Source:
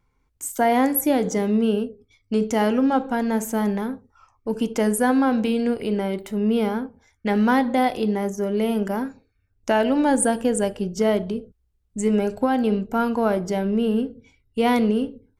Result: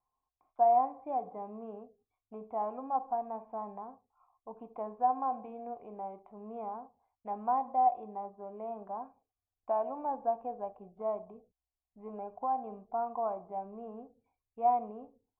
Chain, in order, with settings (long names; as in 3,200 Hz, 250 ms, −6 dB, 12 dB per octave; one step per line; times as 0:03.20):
formant resonators in series a